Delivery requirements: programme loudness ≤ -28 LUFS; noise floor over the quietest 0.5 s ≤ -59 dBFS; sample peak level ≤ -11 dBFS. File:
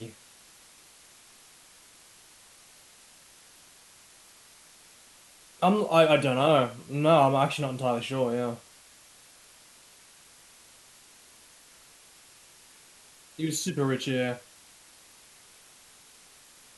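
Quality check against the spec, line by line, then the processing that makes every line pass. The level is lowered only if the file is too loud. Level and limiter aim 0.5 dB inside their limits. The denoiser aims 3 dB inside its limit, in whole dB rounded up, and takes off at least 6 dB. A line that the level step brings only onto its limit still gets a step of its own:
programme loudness -25.5 LUFS: fail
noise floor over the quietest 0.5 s -55 dBFS: fail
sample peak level -7.5 dBFS: fail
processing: denoiser 6 dB, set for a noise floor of -55 dBFS; gain -3 dB; limiter -11.5 dBFS

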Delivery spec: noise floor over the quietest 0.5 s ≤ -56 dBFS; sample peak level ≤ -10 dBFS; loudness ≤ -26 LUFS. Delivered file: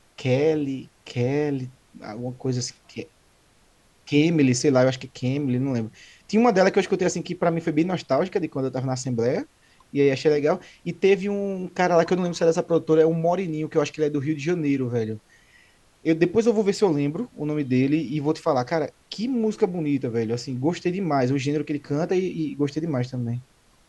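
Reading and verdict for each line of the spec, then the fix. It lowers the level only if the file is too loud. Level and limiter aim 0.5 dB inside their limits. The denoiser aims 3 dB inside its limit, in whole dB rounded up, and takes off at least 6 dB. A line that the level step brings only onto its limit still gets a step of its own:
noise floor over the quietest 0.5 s -59 dBFS: OK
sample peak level -6.0 dBFS: fail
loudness -23.5 LUFS: fail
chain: gain -3 dB; limiter -10.5 dBFS

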